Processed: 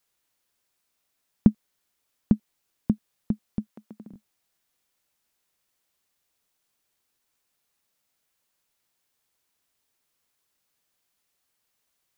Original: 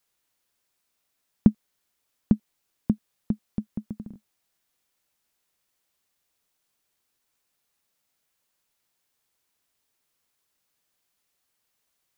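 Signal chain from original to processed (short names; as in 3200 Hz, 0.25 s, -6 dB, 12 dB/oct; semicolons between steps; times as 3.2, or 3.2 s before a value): 3.71–4.11 HPF 630 Hz -> 220 Hz 12 dB/oct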